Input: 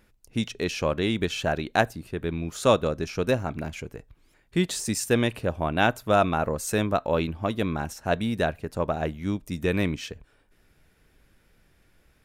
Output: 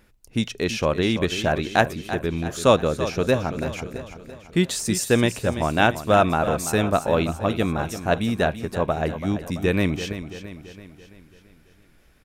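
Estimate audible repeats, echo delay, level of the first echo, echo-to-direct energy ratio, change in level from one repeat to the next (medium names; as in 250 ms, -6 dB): 5, 335 ms, -11.5 dB, -10.0 dB, -5.5 dB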